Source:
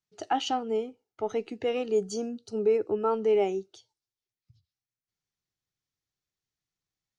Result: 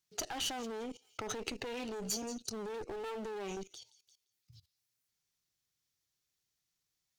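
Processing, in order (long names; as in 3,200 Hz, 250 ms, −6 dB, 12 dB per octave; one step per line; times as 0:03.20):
0:01.54–0:03.57: flanger 1.3 Hz, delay 6.5 ms, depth 3.6 ms, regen −14%
delay with a high-pass on its return 173 ms, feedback 34%, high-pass 5,000 Hz, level −13.5 dB
brickwall limiter −28 dBFS, peak gain reduction 12 dB
asymmetric clip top −47 dBFS, bottom −31 dBFS
output level in coarse steps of 17 dB
high-shelf EQ 2,600 Hz +9.5 dB
level +10 dB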